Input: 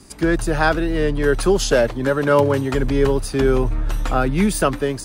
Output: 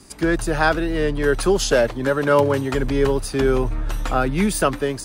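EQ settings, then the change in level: low shelf 340 Hz -3 dB; 0.0 dB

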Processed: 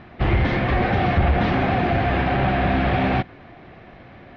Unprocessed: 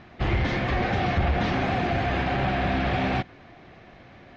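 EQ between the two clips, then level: air absorption 190 m; +5.5 dB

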